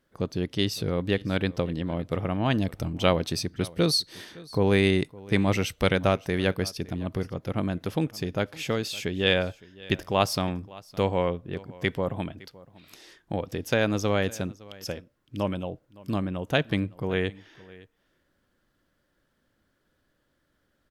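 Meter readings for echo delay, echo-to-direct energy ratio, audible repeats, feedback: 562 ms, −21.5 dB, 1, repeats not evenly spaced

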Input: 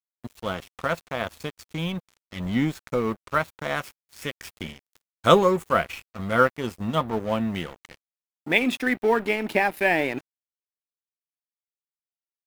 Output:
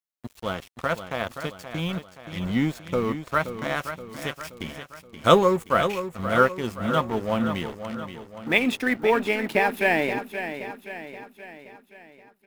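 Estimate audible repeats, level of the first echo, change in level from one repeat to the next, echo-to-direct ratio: 5, −10.0 dB, −6.0 dB, −8.5 dB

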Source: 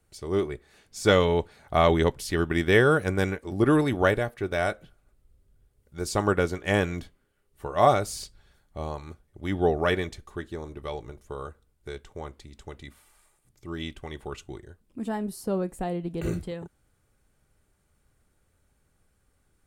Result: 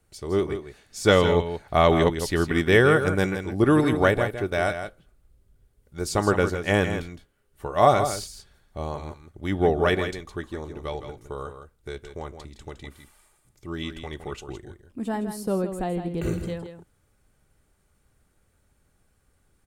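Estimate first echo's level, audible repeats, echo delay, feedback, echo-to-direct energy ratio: −9.0 dB, 1, 163 ms, repeats not evenly spaced, −9.0 dB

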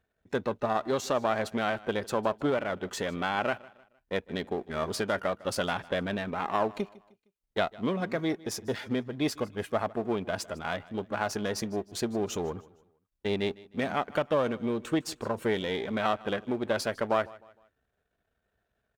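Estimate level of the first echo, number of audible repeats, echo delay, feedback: −21.5 dB, 2, 154 ms, 39%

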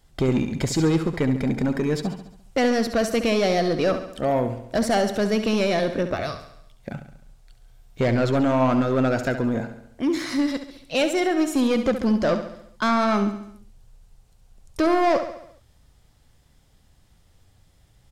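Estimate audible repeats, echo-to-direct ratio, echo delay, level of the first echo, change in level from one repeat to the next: 5, −8.5 dB, 69 ms, −10.0 dB, −5.5 dB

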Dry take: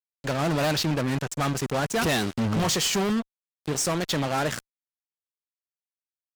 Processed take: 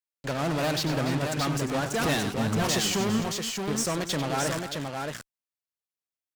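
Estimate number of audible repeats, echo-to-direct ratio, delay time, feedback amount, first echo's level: 3, −3.0 dB, 95 ms, repeats not evenly spaced, −11.0 dB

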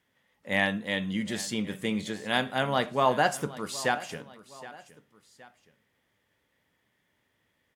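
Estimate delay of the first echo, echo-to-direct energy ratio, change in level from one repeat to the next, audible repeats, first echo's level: 769 ms, −17.0 dB, −7.0 dB, 2, −18.0 dB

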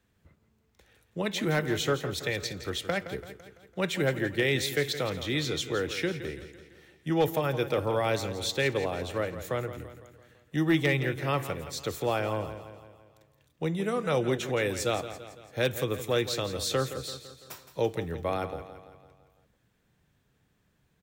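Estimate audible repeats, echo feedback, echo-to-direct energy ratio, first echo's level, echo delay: 5, 53%, −10.5 dB, −12.0 dB, 168 ms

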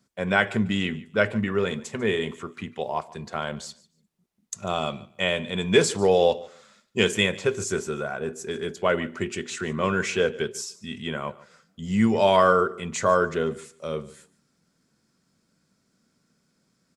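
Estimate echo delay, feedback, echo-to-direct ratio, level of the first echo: 146 ms, 19%, −20.5 dB, −20.5 dB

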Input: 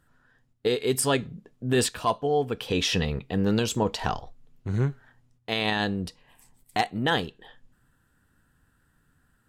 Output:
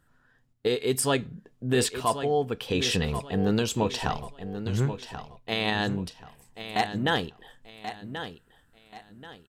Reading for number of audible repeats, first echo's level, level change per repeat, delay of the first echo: 3, −10.5 dB, −10.0 dB, 1,083 ms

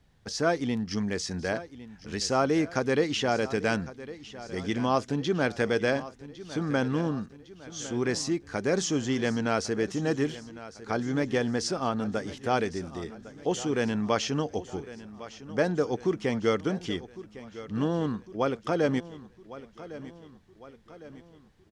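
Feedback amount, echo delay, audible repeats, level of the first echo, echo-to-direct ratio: 52%, 1,106 ms, 4, −16.0 dB, −14.5 dB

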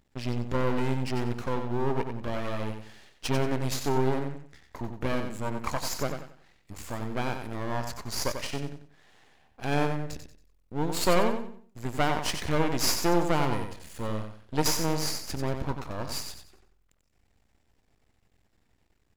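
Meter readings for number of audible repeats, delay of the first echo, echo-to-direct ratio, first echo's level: 3, 92 ms, −6.5 dB, −7.0 dB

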